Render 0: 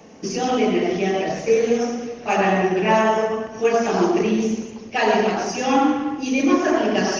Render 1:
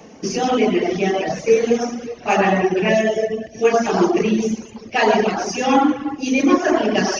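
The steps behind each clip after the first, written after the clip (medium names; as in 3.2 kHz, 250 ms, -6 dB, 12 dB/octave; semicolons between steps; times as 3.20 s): reverb removal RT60 0.64 s; time-frequency box 2.88–3.63 s, 770–1600 Hz -20 dB; trim +3.5 dB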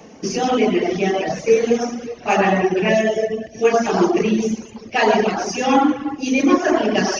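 no audible change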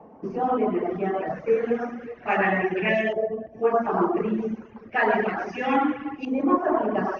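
LFO low-pass saw up 0.32 Hz 920–2400 Hz; trim -8 dB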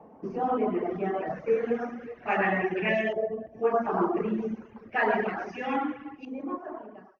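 fade out at the end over 2.12 s; trim -3.5 dB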